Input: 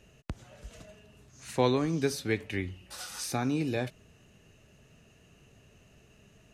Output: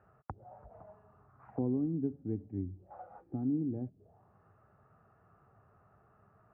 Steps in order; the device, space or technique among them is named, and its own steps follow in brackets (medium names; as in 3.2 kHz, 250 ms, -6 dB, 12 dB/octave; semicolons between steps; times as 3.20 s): envelope filter bass rig (touch-sensitive low-pass 270–1400 Hz down, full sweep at -32.5 dBFS; cabinet simulation 64–2100 Hz, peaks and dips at 100 Hz +7 dB, 260 Hz -5 dB, 780 Hz +10 dB, 1.3 kHz +5 dB); trim -8.5 dB